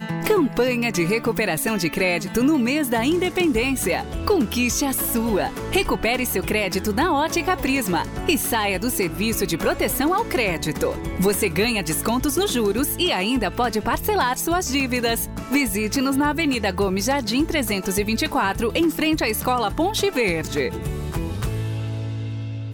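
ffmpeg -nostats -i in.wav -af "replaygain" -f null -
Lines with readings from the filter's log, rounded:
track_gain = +2.6 dB
track_peak = 0.242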